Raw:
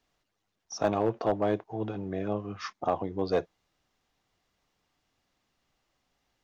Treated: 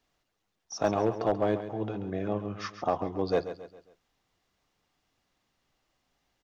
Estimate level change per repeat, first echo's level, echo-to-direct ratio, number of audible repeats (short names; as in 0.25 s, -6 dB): -7.5 dB, -11.5 dB, -10.5 dB, 4